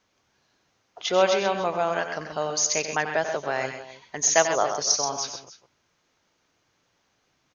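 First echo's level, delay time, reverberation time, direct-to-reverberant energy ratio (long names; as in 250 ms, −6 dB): −10.5 dB, 91 ms, no reverb audible, no reverb audible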